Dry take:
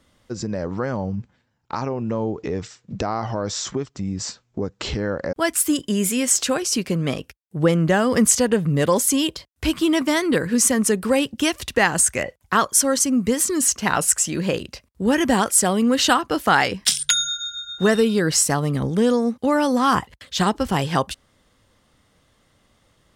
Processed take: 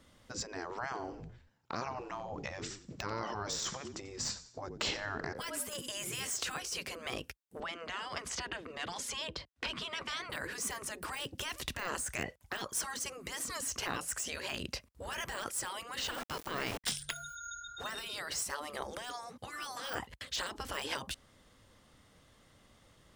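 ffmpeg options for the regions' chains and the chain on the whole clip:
-filter_complex "[0:a]asettb=1/sr,asplit=3[s0][s1][s2];[s0]atrim=end=0.844[s3];[s1]atrim=start=0.84:end=6.27,asetpts=PTS-STARTPTS,afade=t=in:d=0.004:c=qsin,afade=t=out:st=5.426:d=0.004:c=qsin,lowshelf=f=78:g=-11.5,asplit=4[s4][s5][s6][s7];[s5]adelay=90,afreqshift=-40,volume=0.133[s8];[s6]adelay=180,afreqshift=-80,volume=0.0562[s9];[s7]adelay=270,afreqshift=-120,volume=0.0234[s10];[s4][s8][s9][s10]amix=inputs=4:normalize=0,atrim=end_sample=239463[s11];[s2]atrim=start=6.266[s12];[s3][s11]acrossfade=d=0.004:c1=hsin:c2=qsin[s13];[s13][s12]acrossfade=d=0.004:c1=qsin:c2=hsin,asettb=1/sr,asplit=3[s14][s15][s16];[s14]atrim=end=7.604[s17];[s15]atrim=start=7.6:end=10.3,asetpts=PTS-STARTPTS,afade=t=in:d=0.004:c=qsin,afade=t=out:st=2.696:d=0.004:c=qsin,lowpass=4300,acrossover=split=120|290|2000[s18][s19][s20][s21];[s18]acompressor=threshold=0.00891:ratio=3[s22];[s19]acompressor=threshold=0.0447:ratio=3[s23];[s20]acompressor=threshold=0.0562:ratio=3[s24];[s21]acompressor=threshold=0.0224:ratio=3[s25];[s22][s23][s24][s25]amix=inputs=4:normalize=0[s26];[s16]atrim=start=10.296[s27];[s17][s26]acrossfade=d=0.004:c1=hsin:c2=qsin[s28];[s28][s27]acrossfade=d=0.004:c1=qsin:c2=hsin,asettb=1/sr,asplit=3[s29][s30][s31];[s29]atrim=end=16.004[s32];[s30]atrim=start=16:end=16.84,asetpts=PTS-STARTPTS,afade=t=in:d=0.004:c=qsin,afade=t=out:st=0.836:d=0.004:c=qsin,bandreject=f=50:t=h:w=6,bandreject=f=100:t=h:w=6,bandreject=f=150:t=h:w=6,bandreject=f=200:t=h:w=6,bandreject=f=250:t=h:w=6,bandreject=f=300:t=h:w=6,bandreject=f=350:t=h:w=6,bandreject=f=400:t=h:w=6,bandreject=f=450:t=h:w=6,bandreject=f=500:t=h:w=6,aeval=exprs='val(0)*gte(abs(val(0)),0.0422)':c=same[s33];[s31]atrim=start=16.836[s34];[s32][s33]acrossfade=d=0.004:c1=hsin:c2=qsin[s35];[s35][s34]acrossfade=d=0.004:c1=qsin:c2=hsin,deesser=0.65,alimiter=limit=0.141:level=0:latency=1:release=181,afftfilt=real='re*lt(hypot(re,im),0.112)':imag='im*lt(hypot(re,im),0.112)':win_size=1024:overlap=0.75,volume=0.794"

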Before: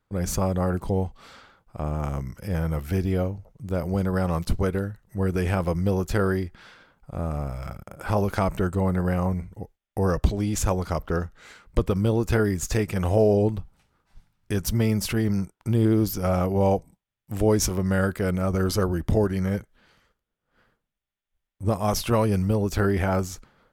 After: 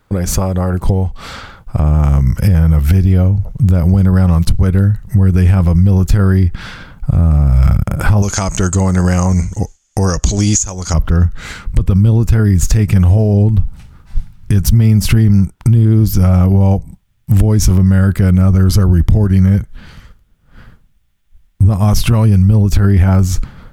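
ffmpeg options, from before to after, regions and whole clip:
-filter_complex "[0:a]asettb=1/sr,asplit=3[s0][s1][s2];[s0]atrim=end=8.224[s3];[s1]atrim=start=8.22:end=10.94,asetpts=PTS-STARTPTS,afade=t=in:d=0.004:c=qsin,afade=t=out:st=2.716:d=0.004:c=qsin,lowpass=f=6700:t=q:w=9.3,bass=f=250:g=-11,treble=f=4000:g=8,bandreject=f=3800:w=25[s4];[s2]atrim=start=10.936[s5];[s3][s4]acrossfade=d=0.004:c1=hsin:c2=qsin[s6];[s6][s5]acrossfade=d=0.004:c1=qsin:c2=hsin,acompressor=threshold=0.0251:ratio=10,asubboost=boost=5.5:cutoff=180,alimiter=level_in=10:limit=0.891:release=50:level=0:latency=1,volume=0.891"

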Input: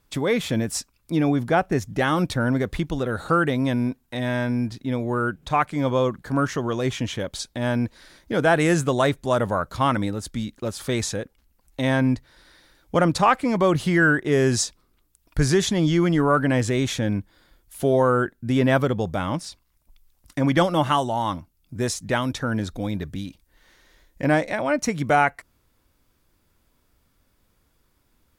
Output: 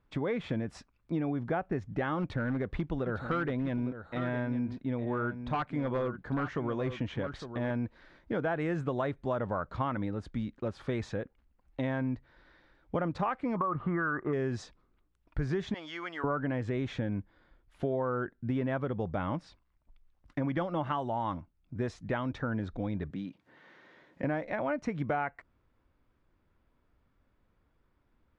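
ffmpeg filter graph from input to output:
-filter_complex "[0:a]asettb=1/sr,asplit=3[s0][s1][s2];[s0]atrim=end=2.204[s3];[s1]atrim=start=2.2:end=7.71,asetpts=PTS-STARTPTS,afade=t=in:d=0.004:c=qsin,afade=t=out:st=5.506:d=0.004:c=qsin,aeval=exprs='0.188*(abs(mod(val(0)/0.188+3,4)-2)-1)':c=same,aecho=1:1:857:0.251,atrim=end_sample=242991[s4];[s2]atrim=start=7.706[s5];[s3][s4]acrossfade=d=0.004:c1=hsin:c2=qsin[s6];[s6][s5]acrossfade=d=0.004:c1=qsin:c2=hsin,asettb=1/sr,asplit=3[s7][s8][s9];[s7]atrim=end=13.564[s10];[s8]atrim=start=13.56:end=14.33,asetpts=PTS-STARTPTS,afade=t=in:d=0.004:c=qsin,afade=t=out:st=0.766:d=0.004:c=qsin,lowpass=f=1200:t=q:w=12,acompressor=threshold=0.2:ratio=6:attack=3.2:release=140:knee=1:detection=peak[s11];[s9]atrim=start=14.326[s12];[s10][s11]acrossfade=d=0.004:c1=hsin:c2=qsin[s13];[s13][s12]acrossfade=d=0.004:c1=qsin:c2=hsin,asettb=1/sr,asplit=3[s14][s15][s16];[s14]atrim=end=15.744[s17];[s15]atrim=start=15.74:end=16.24,asetpts=PTS-STARTPTS,afade=t=in:d=0.004:c=qsin,afade=t=out:st=0.496:d=0.004:c=qsin,highpass=970,highshelf=f=4600:g=6.5,aeval=exprs='sgn(val(0))*max(abs(val(0))-0.00106,0)':c=same[s18];[s16]atrim=start=16.236[s19];[s17][s18]acrossfade=d=0.004:c1=hsin:c2=qsin[s20];[s20][s19]acrossfade=d=0.004:c1=qsin:c2=hsin,asettb=1/sr,asplit=3[s21][s22][s23];[s21]atrim=end=23.104[s24];[s22]atrim=start=23.1:end=24.24,asetpts=PTS-STARTPTS,afade=t=in:d=0.004:c=qsin,afade=t=out:st=1.136:d=0.004:c=qsin,highpass=f=140:w=0.5412,highpass=f=140:w=1.3066,highshelf=f=8700:g=-4.5,acompressor=mode=upward:threshold=0.01:ratio=2.5:attack=3.2:release=140:knee=2.83:detection=peak[s25];[s23]atrim=start=24.236[s26];[s24][s25]acrossfade=d=0.004:c1=hsin:c2=qsin[s27];[s27][s26]acrossfade=d=0.004:c1=qsin:c2=hsin,lowpass=2100,acompressor=threshold=0.0708:ratio=6,volume=0.562"

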